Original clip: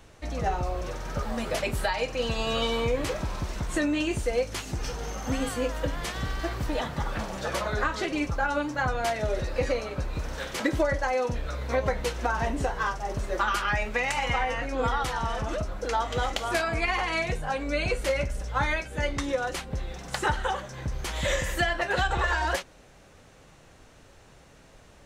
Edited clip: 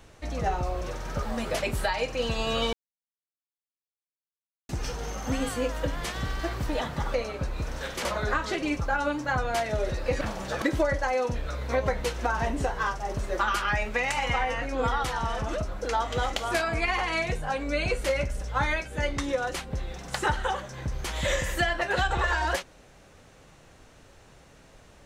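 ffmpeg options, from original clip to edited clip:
ffmpeg -i in.wav -filter_complex "[0:a]asplit=7[link_01][link_02][link_03][link_04][link_05][link_06][link_07];[link_01]atrim=end=2.73,asetpts=PTS-STARTPTS,afade=type=out:start_time=2.726:duration=0.004:curve=hsin[link_08];[link_02]atrim=start=2.73:end=4.69,asetpts=PTS-STARTPTS,volume=0[link_09];[link_03]atrim=start=4.69:end=7.142,asetpts=PTS-STARTPTS,afade=type=in:duration=0.004:curve=hsin[link_10];[link_04]atrim=start=9.708:end=10.622[link_11];[link_05]atrim=start=7.548:end=9.712[link_12];[link_06]atrim=start=7.138:end=7.552[link_13];[link_07]atrim=start=10.618[link_14];[link_08][link_09][link_10]concat=n=3:v=0:a=1[link_15];[link_15][link_11]acrossfade=duration=0.004:curve1=hsin:curve2=hsin[link_16];[link_16][link_12]acrossfade=duration=0.004:curve1=hsin:curve2=hsin[link_17];[link_17][link_13]acrossfade=duration=0.004:curve1=hsin:curve2=hsin[link_18];[link_18][link_14]acrossfade=duration=0.004:curve1=hsin:curve2=hsin" out.wav

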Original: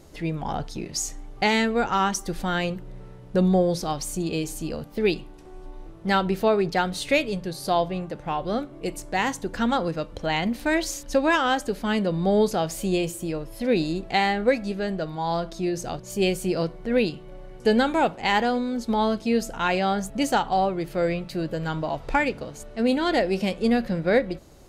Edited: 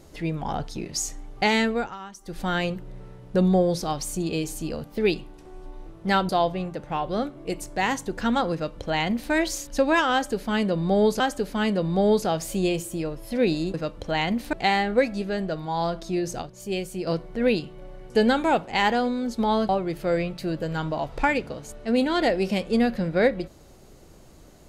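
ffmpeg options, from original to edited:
ffmpeg -i in.wav -filter_complex "[0:a]asplit=10[link_01][link_02][link_03][link_04][link_05][link_06][link_07][link_08][link_09][link_10];[link_01]atrim=end=1.96,asetpts=PTS-STARTPTS,afade=type=out:start_time=1.69:duration=0.27:silence=0.141254[link_11];[link_02]atrim=start=1.96:end=2.2,asetpts=PTS-STARTPTS,volume=-17dB[link_12];[link_03]atrim=start=2.2:end=6.292,asetpts=PTS-STARTPTS,afade=type=in:duration=0.27:silence=0.141254[link_13];[link_04]atrim=start=7.648:end=12.562[link_14];[link_05]atrim=start=11.488:end=14.032[link_15];[link_06]atrim=start=9.888:end=10.682[link_16];[link_07]atrim=start=14.028:end=15.922[link_17];[link_08]atrim=start=15.918:end=16.572,asetpts=PTS-STARTPTS,volume=-6dB[link_18];[link_09]atrim=start=16.568:end=19.192[link_19];[link_10]atrim=start=20.598[link_20];[link_11][link_12][link_13]concat=n=3:v=0:a=1[link_21];[link_21][link_14]acrossfade=duration=0.004:curve1=hsin:curve2=hsin[link_22];[link_22][link_15]acrossfade=duration=0.004:curve1=hsin:curve2=hsin[link_23];[link_23][link_16]acrossfade=duration=0.004:curve1=hsin:curve2=hsin[link_24];[link_24][link_17]acrossfade=duration=0.004:curve1=hsin:curve2=hsin[link_25];[link_25][link_18]acrossfade=duration=0.004:curve1=hsin:curve2=hsin[link_26];[link_26][link_19]acrossfade=duration=0.004:curve1=hsin:curve2=hsin[link_27];[link_27][link_20]acrossfade=duration=0.004:curve1=hsin:curve2=hsin" out.wav

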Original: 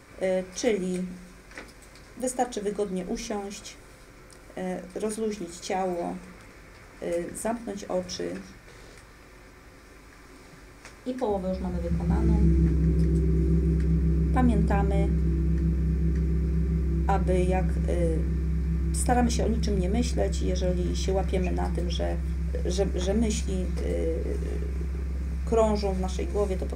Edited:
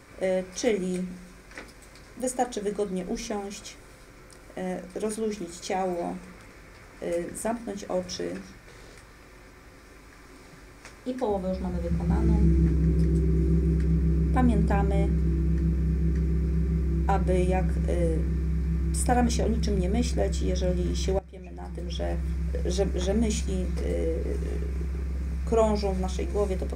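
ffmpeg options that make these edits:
ffmpeg -i in.wav -filter_complex "[0:a]asplit=2[link_01][link_02];[link_01]atrim=end=21.19,asetpts=PTS-STARTPTS,afade=type=out:start_time=21.186:duration=0.004:curve=hsin:silence=0.112202[link_03];[link_02]atrim=start=21.19,asetpts=PTS-STARTPTS,afade=type=in:duration=0.95:curve=qua:silence=0.112202[link_04];[link_03][link_04]concat=n=2:v=0:a=1" out.wav

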